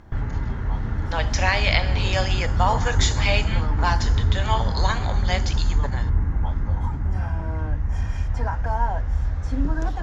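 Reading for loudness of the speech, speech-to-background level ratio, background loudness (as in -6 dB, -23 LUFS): -26.0 LUFS, -1.0 dB, -25.0 LUFS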